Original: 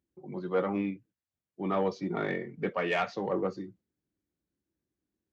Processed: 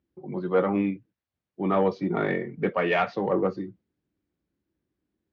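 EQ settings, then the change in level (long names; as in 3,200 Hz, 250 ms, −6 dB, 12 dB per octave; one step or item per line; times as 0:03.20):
high-frequency loss of the air 190 metres
+6.5 dB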